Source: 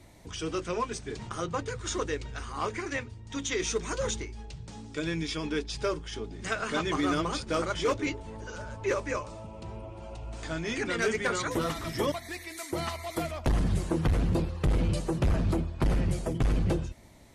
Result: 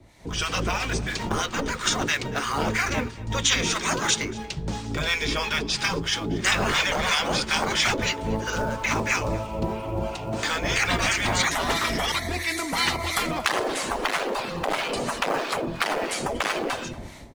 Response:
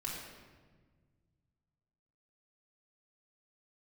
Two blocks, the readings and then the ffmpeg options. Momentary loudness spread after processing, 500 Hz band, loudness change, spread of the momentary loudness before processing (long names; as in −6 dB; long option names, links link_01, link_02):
7 LU, +3.0 dB, +6.5 dB, 13 LU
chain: -filter_complex "[0:a]afftfilt=real='re*lt(hypot(re,im),0.0708)':imag='im*lt(hypot(re,im),0.0708)':win_size=1024:overlap=0.75,highshelf=frequency=9600:gain=-11.5,acrossover=split=1000[link_01][link_02];[link_01]aeval=exprs='val(0)*(1-0.7/2+0.7/2*cos(2*PI*3*n/s))':channel_layout=same[link_03];[link_02]aeval=exprs='val(0)*(1-0.7/2-0.7/2*cos(2*PI*3*n/s))':channel_layout=same[link_04];[link_03][link_04]amix=inputs=2:normalize=0,acrossover=split=120|1000|2000[link_05][link_06][link_07][link_08];[link_07]acrusher=bits=3:mode=log:mix=0:aa=0.000001[link_09];[link_05][link_06][link_09][link_08]amix=inputs=4:normalize=0,dynaudnorm=framelen=200:gausssize=3:maxgain=16dB,asplit=2[link_10][link_11];[link_11]adelay=233.2,volume=-19dB,highshelf=frequency=4000:gain=-5.25[link_12];[link_10][link_12]amix=inputs=2:normalize=0,volume=2.5dB"